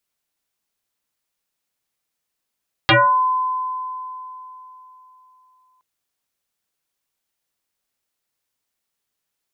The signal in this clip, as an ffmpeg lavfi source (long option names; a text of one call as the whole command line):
ffmpeg -f lavfi -i "aevalsrc='0.355*pow(10,-3*t/3.54)*sin(2*PI*1020*t+7.2*pow(10,-3*t/0.38)*sin(2*PI*0.44*1020*t))':duration=2.92:sample_rate=44100" out.wav